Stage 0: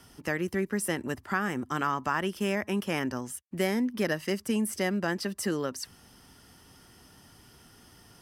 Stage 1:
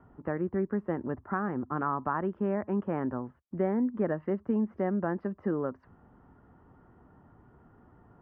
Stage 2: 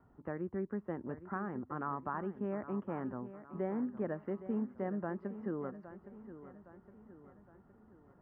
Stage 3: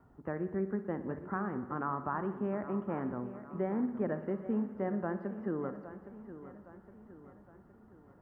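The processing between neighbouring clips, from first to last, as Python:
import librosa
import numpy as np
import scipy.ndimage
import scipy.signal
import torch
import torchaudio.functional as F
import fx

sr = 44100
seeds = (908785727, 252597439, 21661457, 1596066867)

y1 = scipy.signal.sosfilt(scipy.signal.butter(4, 1300.0, 'lowpass', fs=sr, output='sos'), x)
y2 = fx.echo_feedback(y1, sr, ms=814, feedback_pct=49, wet_db=-13)
y2 = F.gain(torch.from_numpy(y2), -8.0).numpy()
y3 = fx.rev_spring(y2, sr, rt60_s=1.3, pass_ms=(57,), chirp_ms=30, drr_db=10.5)
y3 = F.gain(torch.from_numpy(y3), 3.0).numpy()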